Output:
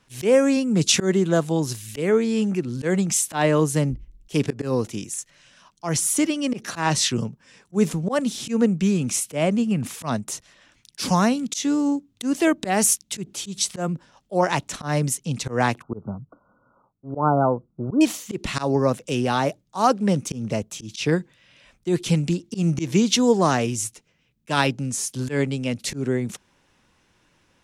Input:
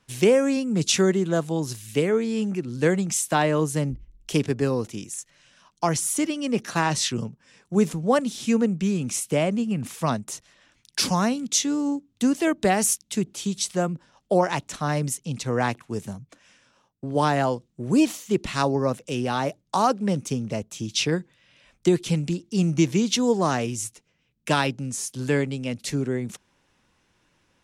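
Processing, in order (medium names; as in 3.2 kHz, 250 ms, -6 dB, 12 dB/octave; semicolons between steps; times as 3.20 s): slow attack 129 ms; 15.82–18.01 s: brick-wall FIR low-pass 1.5 kHz; trim +3.5 dB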